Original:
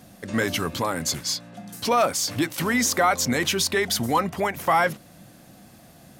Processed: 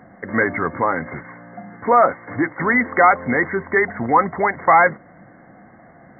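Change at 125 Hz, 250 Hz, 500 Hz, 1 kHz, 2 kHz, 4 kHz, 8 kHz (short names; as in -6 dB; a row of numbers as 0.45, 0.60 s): +0.5 dB, +3.0 dB, +6.0 dB, +7.5 dB, +7.5 dB, under -40 dB, under -40 dB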